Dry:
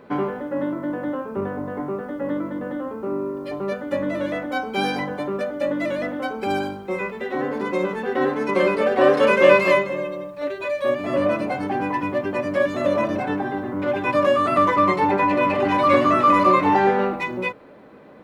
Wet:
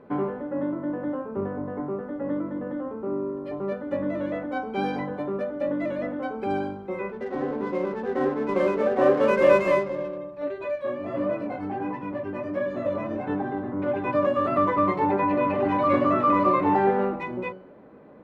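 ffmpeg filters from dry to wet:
ffmpeg -i in.wav -filter_complex "[0:a]asettb=1/sr,asplit=3[link_01][link_02][link_03];[link_01]atrim=end=7.124[link_04];[link_02]atrim=start=7.12:end=10.18,asetpts=PTS-STARTPTS,afade=type=in:duration=0.004:curve=qsin,afade=type=out:start_time=3.056:duration=0.004:curve=qsin,adynamicsmooth=sensitivity=5:basefreq=650[link_05];[link_03]atrim=start=10.176[link_06];[link_04][link_05]acrossfade=duration=0.004:curve1=hsin:curve2=qsin[link_07];[link_07][link_06]acrossfade=duration=0.004:curve1=qsin:curve2=hsin,asplit=3[link_08][link_09][link_10];[link_08]afade=type=out:start_time=10.75:duration=0.02[link_11];[link_09]flanger=delay=15.5:depth=4.2:speed=1.5,afade=type=in:start_time=10.75:duration=0.02,afade=type=out:start_time=13.25:duration=0.02[link_12];[link_10]afade=type=in:start_time=13.25:duration=0.02[link_13];[link_11][link_12][link_13]amix=inputs=3:normalize=0,lowpass=frequency=1000:poles=1,bandreject=frequency=186.9:width_type=h:width=4,bandreject=frequency=373.8:width_type=h:width=4,bandreject=frequency=560.7:width_type=h:width=4,bandreject=frequency=747.6:width_type=h:width=4,bandreject=frequency=934.5:width_type=h:width=4,bandreject=frequency=1121.4:width_type=h:width=4,bandreject=frequency=1308.3:width_type=h:width=4,bandreject=frequency=1495.2:width_type=h:width=4,bandreject=frequency=1682.1:width_type=h:width=4,bandreject=frequency=1869:width_type=h:width=4,bandreject=frequency=2055.9:width_type=h:width=4,bandreject=frequency=2242.8:width_type=h:width=4,bandreject=frequency=2429.7:width_type=h:width=4,bandreject=frequency=2616.6:width_type=h:width=4,bandreject=frequency=2803.5:width_type=h:width=4,bandreject=frequency=2990.4:width_type=h:width=4,bandreject=frequency=3177.3:width_type=h:width=4,bandreject=frequency=3364.2:width_type=h:width=4,bandreject=frequency=3551.1:width_type=h:width=4,bandreject=frequency=3738:width_type=h:width=4,bandreject=frequency=3924.9:width_type=h:width=4,bandreject=frequency=4111.8:width_type=h:width=4,bandreject=frequency=4298.7:width_type=h:width=4,bandreject=frequency=4485.6:width_type=h:width=4,bandreject=frequency=4672.5:width_type=h:width=4,bandreject=frequency=4859.4:width_type=h:width=4,bandreject=frequency=5046.3:width_type=h:width=4,bandreject=frequency=5233.2:width_type=h:width=4,bandreject=frequency=5420.1:width_type=h:width=4,bandreject=frequency=5607:width_type=h:width=4,bandreject=frequency=5793.9:width_type=h:width=4,bandreject=frequency=5980.8:width_type=h:width=4,bandreject=frequency=6167.7:width_type=h:width=4,bandreject=frequency=6354.6:width_type=h:width=4,bandreject=frequency=6541.5:width_type=h:width=4,bandreject=frequency=6728.4:width_type=h:width=4,bandreject=frequency=6915.3:width_type=h:width=4,volume=-2dB" out.wav

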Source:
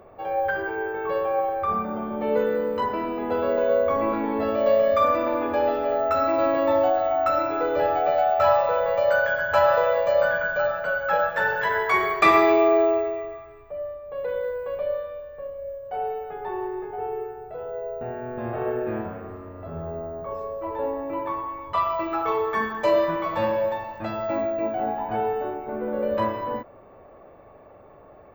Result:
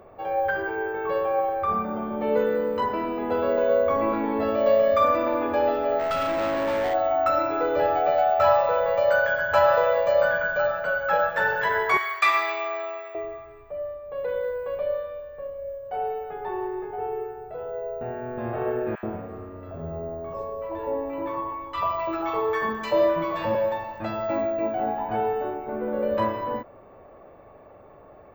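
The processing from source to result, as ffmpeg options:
ffmpeg -i in.wav -filter_complex "[0:a]asplit=3[link_01][link_02][link_03];[link_01]afade=type=out:start_time=5.98:duration=0.02[link_04];[link_02]volume=22.5dB,asoftclip=hard,volume=-22.5dB,afade=type=in:start_time=5.98:duration=0.02,afade=type=out:start_time=6.93:duration=0.02[link_05];[link_03]afade=type=in:start_time=6.93:duration=0.02[link_06];[link_04][link_05][link_06]amix=inputs=3:normalize=0,asettb=1/sr,asplit=3[link_07][link_08][link_09];[link_07]atrim=end=11.974[link_10];[link_08]atrim=start=11.97:end=13.15,asetpts=PTS-STARTPTS,afade=type=in:duration=0.004:curve=qsin,afade=type=out:start_time=1.176:duration=0.004:curve=qsin,highpass=1300[link_11];[link_09]atrim=start=13.146[link_12];[link_10][link_11]acrossfade=duration=0.004:curve1=hsin:curve2=qsin[link_13];[link_13][link_12]acrossfade=duration=0.004:curve1=qsin:curve2=hsin,asettb=1/sr,asplit=3[link_14][link_15][link_16];[link_14]atrim=end=18.954[link_17];[link_15]atrim=start=18.95:end=23.55,asetpts=PTS-STARTPTS,afade=type=in:duration=0.004:curve=qsin,afade=type=out:start_time=4.596:duration=0.004:curve=qsin,acrossover=split=1200[link_18][link_19];[link_18]adelay=80[link_20];[link_20][link_19]amix=inputs=2:normalize=0,atrim=end_sample=202860[link_21];[link_16]atrim=start=23.546[link_22];[link_17][link_21]acrossfade=duration=0.004:curve1=hsin:curve2=qsin[link_23];[link_23][link_22]acrossfade=duration=0.004:curve1=qsin:curve2=hsin" out.wav

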